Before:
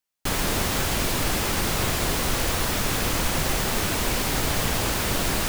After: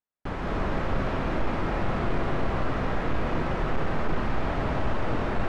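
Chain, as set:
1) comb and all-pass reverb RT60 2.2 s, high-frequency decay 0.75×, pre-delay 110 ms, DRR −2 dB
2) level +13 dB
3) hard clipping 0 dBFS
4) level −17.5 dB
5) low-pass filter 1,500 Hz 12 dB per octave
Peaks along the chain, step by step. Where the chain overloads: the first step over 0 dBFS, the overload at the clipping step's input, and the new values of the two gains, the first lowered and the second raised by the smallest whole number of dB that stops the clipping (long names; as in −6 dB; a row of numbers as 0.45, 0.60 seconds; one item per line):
−5.5, +7.5, 0.0, −17.5, −17.0 dBFS
step 2, 7.5 dB
step 2 +5 dB, step 4 −9.5 dB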